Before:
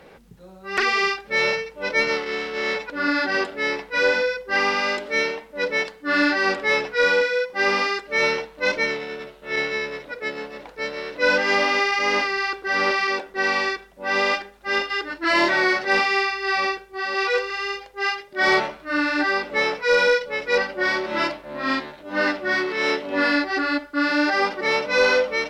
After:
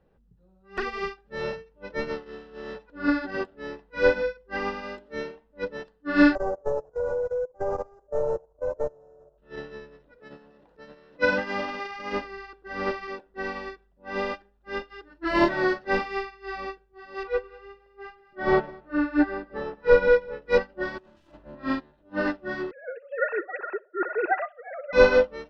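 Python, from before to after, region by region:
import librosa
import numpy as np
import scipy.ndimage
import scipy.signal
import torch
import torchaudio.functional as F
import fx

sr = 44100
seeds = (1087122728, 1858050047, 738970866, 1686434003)

y = fx.chain(x, sr, fx.cvsd(bps=32000),
    fx.curve_eq(hz=(140.0, 220.0, 360.0, 580.0, 1500.0, 2100.0, 3000.0, 4500.0, 7500.0, 12000.0), db=(0, -14, -2, 12, -8, -25, -24, -20, 10, -13)),
    fx.level_steps(step_db=11), at=(6.35, 9.38))
y = fx.chain(y, sr, fx.highpass(hz=100.0, slope=12),
    fx.dynamic_eq(hz=390.0, q=1.6, threshold_db=-37.0, ratio=4.0, max_db=-6),
    fx.transient(attack_db=3, sustain_db=8), at=(10.18, 12.13))
y = fx.chain(y, sr, fx.lowpass(hz=1700.0, slope=6),
    fx.echo_single(ms=206, db=-10.0), at=(17.23, 20.46))
y = fx.chain(y, sr, fx.self_delay(depth_ms=0.47),
    fx.over_compress(threshold_db=-35.0, ratio=-1.0),
    fx.room_flutter(wall_m=9.3, rt60_s=0.23), at=(20.98, 21.55))
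y = fx.chain(y, sr, fx.sine_speech(),
    fx.highpass(hz=250.0, slope=12),
    fx.echo_filtered(ms=61, feedback_pct=30, hz=2100.0, wet_db=-12.0), at=(22.71, 24.93))
y = fx.riaa(y, sr, side='playback')
y = fx.notch(y, sr, hz=2200.0, q=5.9)
y = fx.upward_expand(y, sr, threshold_db=-30.0, expansion=2.5)
y = y * librosa.db_to_amplitude(2.0)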